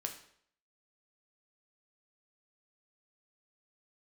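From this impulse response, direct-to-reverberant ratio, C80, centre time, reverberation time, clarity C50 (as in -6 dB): 3.0 dB, 12.5 dB, 16 ms, 0.65 s, 9.0 dB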